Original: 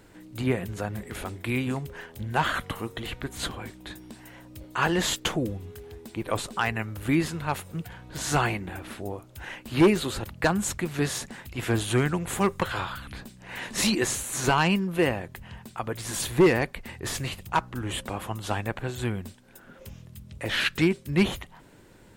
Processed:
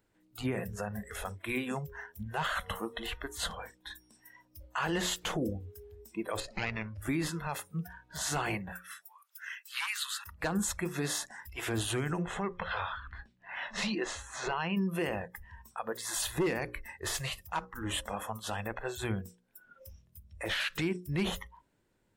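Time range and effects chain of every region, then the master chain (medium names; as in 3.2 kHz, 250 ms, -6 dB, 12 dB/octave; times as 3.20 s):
6.40–7.02 s: comb filter that takes the minimum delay 0.42 ms + low-pass 5.1 kHz
8.72–10.25 s: high-pass 1.2 kHz 24 dB/octave + treble shelf 8.5 kHz +2 dB + upward compressor, threshold -48 dBFS
12.22–14.77 s: low-pass 3.8 kHz + compression, threshold -26 dBFS
whole clip: spectral noise reduction 19 dB; hum notches 60/120/180/240/300/360/420/480/540 Hz; peak limiter -21.5 dBFS; trim -1.5 dB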